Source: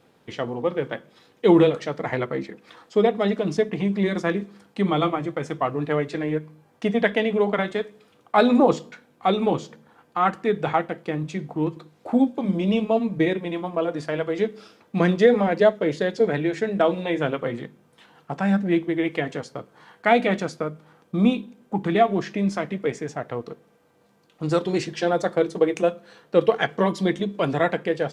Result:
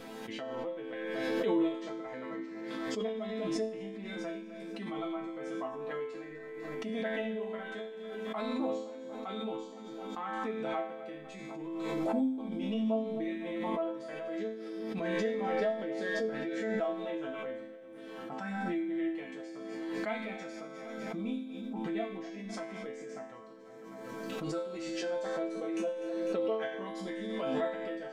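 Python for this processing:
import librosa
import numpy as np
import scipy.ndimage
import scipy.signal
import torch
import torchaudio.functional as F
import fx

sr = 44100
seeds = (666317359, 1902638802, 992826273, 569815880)

y = fx.resonator_bank(x, sr, root=57, chord='minor', decay_s=0.68)
y = fx.echo_split(y, sr, split_hz=420.0, low_ms=369, high_ms=250, feedback_pct=52, wet_db=-15.5)
y = fx.pre_swell(y, sr, db_per_s=21.0)
y = F.gain(torch.from_numpy(y), 5.0).numpy()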